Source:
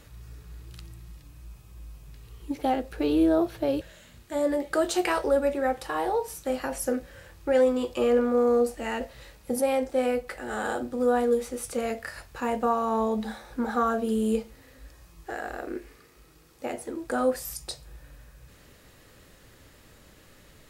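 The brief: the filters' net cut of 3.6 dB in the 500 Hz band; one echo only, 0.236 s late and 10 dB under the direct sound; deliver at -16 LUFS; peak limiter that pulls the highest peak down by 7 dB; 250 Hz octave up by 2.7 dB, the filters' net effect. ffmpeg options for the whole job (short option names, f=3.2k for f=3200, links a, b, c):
-af "equalizer=f=250:t=o:g=4.5,equalizer=f=500:t=o:g=-5,alimiter=limit=-19dB:level=0:latency=1,aecho=1:1:236:0.316,volume=13.5dB"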